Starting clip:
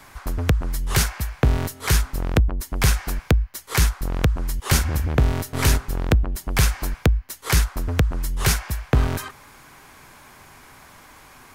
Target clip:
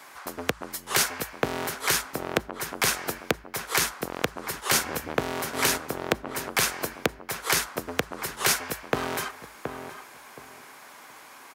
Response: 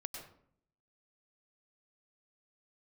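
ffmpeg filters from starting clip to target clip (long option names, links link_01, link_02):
-filter_complex "[0:a]highpass=350,asplit=2[link_01][link_02];[link_02]adelay=722,lowpass=frequency=1500:poles=1,volume=-7dB,asplit=2[link_03][link_04];[link_04]adelay=722,lowpass=frequency=1500:poles=1,volume=0.23,asplit=2[link_05][link_06];[link_06]adelay=722,lowpass=frequency=1500:poles=1,volume=0.23[link_07];[link_01][link_03][link_05][link_07]amix=inputs=4:normalize=0"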